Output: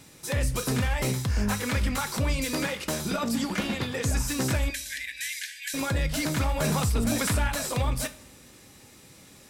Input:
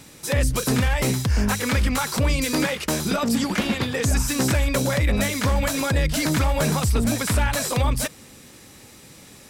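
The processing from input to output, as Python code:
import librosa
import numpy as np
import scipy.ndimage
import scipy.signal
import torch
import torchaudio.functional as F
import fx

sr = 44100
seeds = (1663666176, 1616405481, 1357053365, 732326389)

y = fx.brickwall_bandpass(x, sr, low_hz=1500.0, high_hz=14000.0, at=(4.7, 5.74))
y = fx.rev_double_slope(y, sr, seeds[0], early_s=0.33, late_s=1.5, knee_db=-17, drr_db=8.5)
y = fx.env_flatten(y, sr, amount_pct=50, at=(6.64, 7.48))
y = y * librosa.db_to_amplitude(-6.0)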